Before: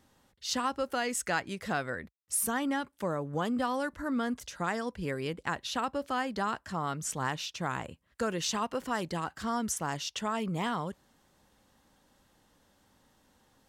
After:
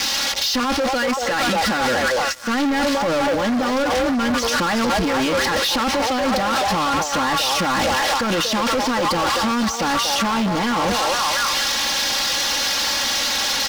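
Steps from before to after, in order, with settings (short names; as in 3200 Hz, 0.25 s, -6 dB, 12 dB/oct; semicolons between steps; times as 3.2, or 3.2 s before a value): switching spikes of -27 dBFS; on a send: delay with a stepping band-pass 0.235 s, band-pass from 580 Hz, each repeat 0.7 oct, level -1.5 dB; on the sum: negative-ratio compressor -36 dBFS, ratio -1; steep low-pass 5700 Hz; comb 3.6 ms, depth 80%; sample leveller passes 5; gain +4.5 dB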